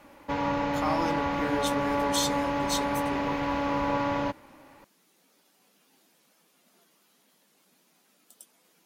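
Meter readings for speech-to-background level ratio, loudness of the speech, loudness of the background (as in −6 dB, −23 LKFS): −5.0 dB, −33.5 LKFS, −28.5 LKFS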